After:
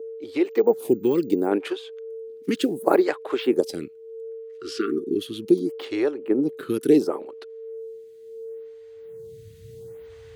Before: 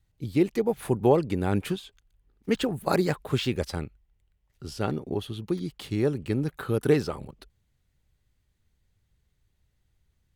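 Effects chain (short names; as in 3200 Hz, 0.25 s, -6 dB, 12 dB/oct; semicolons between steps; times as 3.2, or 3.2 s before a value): 2.55–3.07 block floating point 7-bit; recorder AGC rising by 7.7 dB/s; 4.46–5.2 spectral repair 410–1100 Hz before; whine 450 Hz -40 dBFS; 0.45–1.47 careless resampling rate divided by 2×, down filtered, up hold; 6.11–6.7 high shelf 3300 Hz -10 dB; in parallel at -2.5 dB: level quantiser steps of 12 dB; on the sum: high-pass sweep 320 Hz -> 110 Hz, 8.52–9.23; photocell phaser 0.71 Hz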